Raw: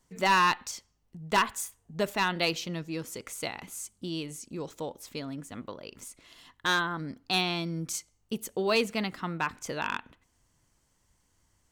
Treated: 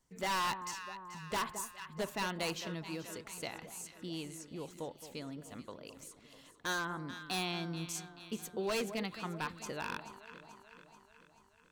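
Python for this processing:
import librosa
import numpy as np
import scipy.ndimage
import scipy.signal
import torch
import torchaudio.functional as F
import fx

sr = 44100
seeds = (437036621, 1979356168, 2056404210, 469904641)

y = fx.echo_alternate(x, sr, ms=217, hz=1100.0, feedback_pct=75, wet_db=-11.5)
y = 10.0 ** (-21.5 / 20.0) * (np.abs((y / 10.0 ** (-21.5 / 20.0) + 3.0) % 4.0 - 2.0) - 1.0)
y = y * 10.0 ** (-7.0 / 20.0)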